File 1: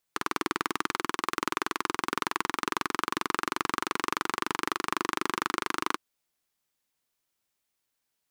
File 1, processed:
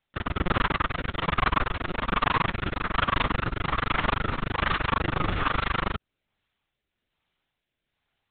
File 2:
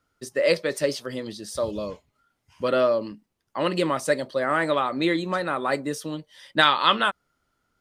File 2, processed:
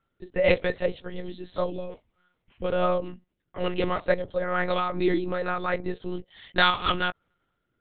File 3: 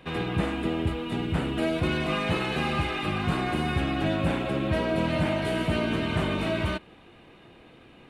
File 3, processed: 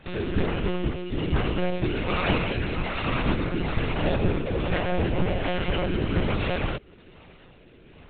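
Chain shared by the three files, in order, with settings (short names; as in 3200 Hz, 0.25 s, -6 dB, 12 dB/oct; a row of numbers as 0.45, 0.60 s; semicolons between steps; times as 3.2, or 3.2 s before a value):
rotary speaker horn 1.2 Hz; monotone LPC vocoder at 8 kHz 180 Hz; match loudness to -27 LUFS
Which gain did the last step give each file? +10.0, +1.0, +3.5 dB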